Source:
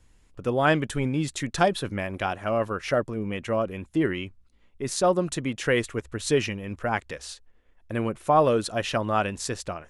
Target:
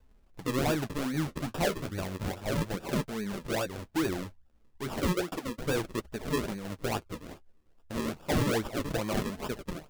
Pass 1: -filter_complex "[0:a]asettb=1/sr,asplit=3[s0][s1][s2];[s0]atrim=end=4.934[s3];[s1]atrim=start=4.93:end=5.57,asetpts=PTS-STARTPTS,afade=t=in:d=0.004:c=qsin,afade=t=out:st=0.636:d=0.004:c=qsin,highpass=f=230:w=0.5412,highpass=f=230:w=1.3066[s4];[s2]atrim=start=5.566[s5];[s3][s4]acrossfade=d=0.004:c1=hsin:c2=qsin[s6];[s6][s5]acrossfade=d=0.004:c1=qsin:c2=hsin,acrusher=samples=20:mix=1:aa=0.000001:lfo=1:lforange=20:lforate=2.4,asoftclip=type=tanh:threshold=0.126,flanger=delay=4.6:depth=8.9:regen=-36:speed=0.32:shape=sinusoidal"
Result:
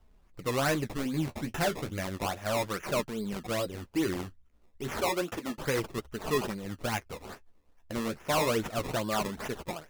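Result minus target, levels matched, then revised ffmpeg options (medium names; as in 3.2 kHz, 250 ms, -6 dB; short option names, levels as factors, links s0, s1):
decimation with a swept rate: distortion -10 dB
-filter_complex "[0:a]asettb=1/sr,asplit=3[s0][s1][s2];[s0]atrim=end=4.934[s3];[s1]atrim=start=4.93:end=5.57,asetpts=PTS-STARTPTS,afade=t=in:d=0.004:c=qsin,afade=t=out:st=0.636:d=0.004:c=qsin,highpass=f=230:w=0.5412,highpass=f=230:w=1.3066[s4];[s2]atrim=start=5.566[s5];[s3][s4]acrossfade=d=0.004:c1=hsin:c2=qsin[s6];[s6][s5]acrossfade=d=0.004:c1=qsin:c2=hsin,acrusher=samples=41:mix=1:aa=0.000001:lfo=1:lforange=41:lforate=2.4,asoftclip=type=tanh:threshold=0.126,flanger=delay=4.6:depth=8.9:regen=-36:speed=0.32:shape=sinusoidal"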